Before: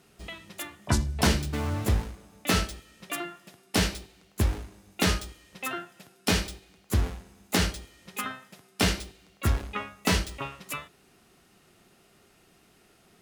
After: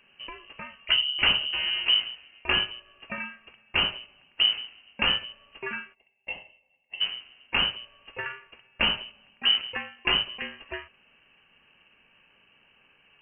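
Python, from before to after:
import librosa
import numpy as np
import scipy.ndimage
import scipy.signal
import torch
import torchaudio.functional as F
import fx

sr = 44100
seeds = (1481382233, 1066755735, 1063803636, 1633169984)

y = fx.vowel_filter(x, sr, vowel='u', at=(5.93, 7.0), fade=0.02)
y = fx.freq_invert(y, sr, carrier_hz=3000)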